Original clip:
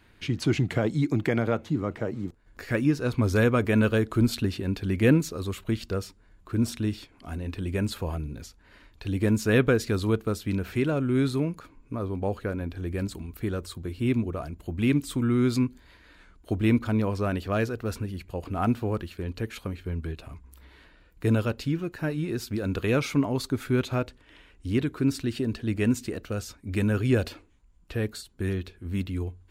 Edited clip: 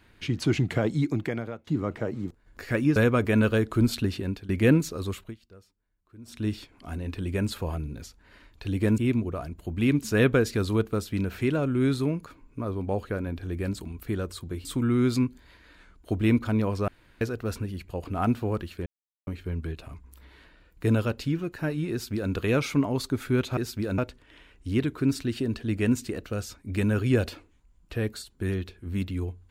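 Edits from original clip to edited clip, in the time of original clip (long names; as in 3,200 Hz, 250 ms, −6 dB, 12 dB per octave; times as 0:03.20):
0:00.98–0:01.67: fade out, to −23 dB
0:02.96–0:03.36: remove
0:04.63–0:04.89: fade out, to −18.5 dB
0:05.52–0:06.88: duck −22 dB, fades 0.23 s
0:13.99–0:15.05: move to 0:09.38
0:17.28–0:17.61: fill with room tone
0:19.26–0:19.67: silence
0:22.31–0:22.72: duplicate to 0:23.97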